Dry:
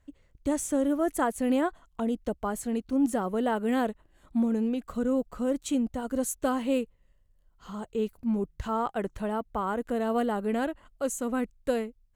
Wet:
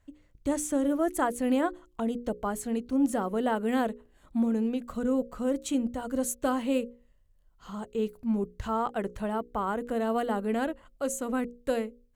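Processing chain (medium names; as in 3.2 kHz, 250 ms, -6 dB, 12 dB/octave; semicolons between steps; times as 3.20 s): hum notches 60/120/180/240/300/360/420/480/540 Hz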